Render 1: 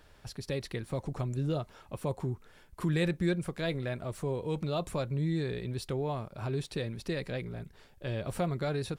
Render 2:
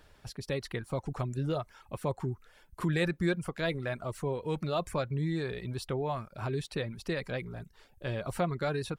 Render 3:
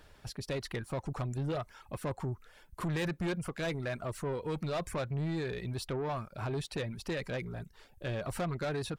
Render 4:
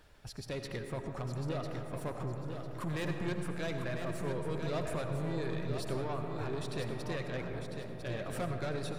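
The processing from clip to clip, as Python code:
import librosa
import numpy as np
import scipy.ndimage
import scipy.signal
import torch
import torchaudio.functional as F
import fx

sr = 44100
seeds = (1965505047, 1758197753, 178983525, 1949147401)

y1 = fx.dereverb_blind(x, sr, rt60_s=0.52)
y1 = fx.dynamic_eq(y1, sr, hz=1300.0, q=0.77, threshold_db=-50.0, ratio=4.0, max_db=5)
y2 = 10.0 ** (-31.0 / 20.0) * np.tanh(y1 / 10.0 ** (-31.0 / 20.0))
y2 = F.gain(torch.from_numpy(y2), 1.5).numpy()
y3 = fx.echo_feedback(y2, sr, ms=1000, feedback_pct=28, wet_db=-7.0)
y3 = fx.rev_freeverb(y3, sr, rt60_s=3.7, hf_ratio=0.25, predelay_ms=45, drr_db=4.5)
y3 = F.gain(torch.from_numpy(y3), -3.5).numpy()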